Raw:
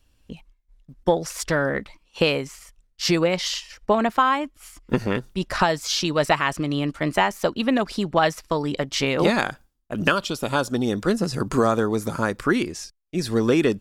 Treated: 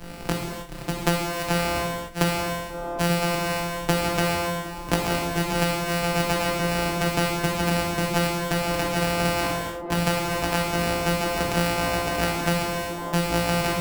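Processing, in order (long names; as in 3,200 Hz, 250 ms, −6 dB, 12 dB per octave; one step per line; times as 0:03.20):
samples sorted by size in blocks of 256 samples
on a send: delay with a band-pass on its return 1,191 ms, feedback 75%, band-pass 520 Hz, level −18 dB
on the sum: reverb whose tail is shaped and stops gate 320 ms falling, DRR −3 dB
multiband upward and downward compressor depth 100%
level −5.5 dB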